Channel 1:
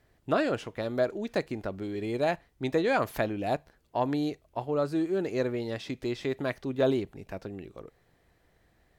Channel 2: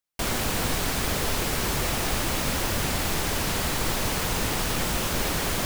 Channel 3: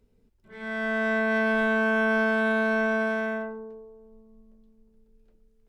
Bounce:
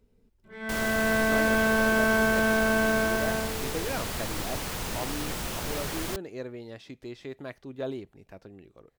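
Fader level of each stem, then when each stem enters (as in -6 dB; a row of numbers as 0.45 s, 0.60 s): -8.5 dB, -7.0 dB, 0.0 dB; 1.00 s, 0.50 s, 0.00 s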